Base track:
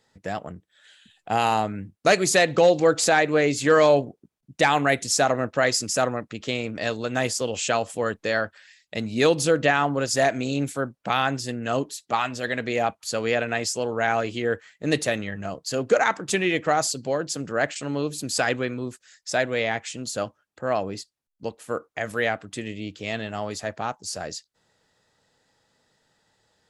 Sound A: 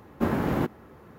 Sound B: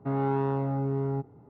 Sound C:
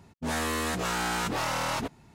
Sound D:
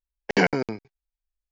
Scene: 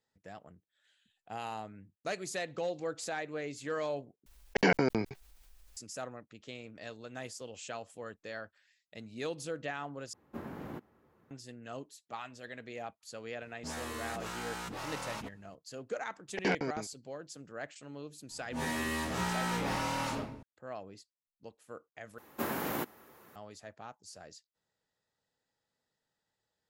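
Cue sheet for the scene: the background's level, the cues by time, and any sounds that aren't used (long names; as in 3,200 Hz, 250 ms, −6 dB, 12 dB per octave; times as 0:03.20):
base track −18.5 dB
0:04.26: overwrite with D −6.5 dB + envelope flattener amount 50%
0:10.13: overwrite with A −17 dB + low-shelf EQ 61 Hz −8 dB
0:13.41: mix in C −11.5 dB
0:16.08: mix in D −9.5 dB + soft clipping −11 dBFS
0:18.29: mix in C −14.5 dB + rectangular room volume 160 cubic metres, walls mixed, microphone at 2.5 metres
0:22.18: overwrite with A −5.5 dB + RIAA equalisation recording
not used: B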